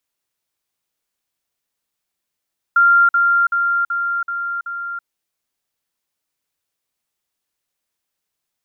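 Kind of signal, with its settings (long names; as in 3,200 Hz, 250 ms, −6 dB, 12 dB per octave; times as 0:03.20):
level staircase 1,390 Hz −8.5 dBFS, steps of −3 dB, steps 6, 0.33 s 0.05 s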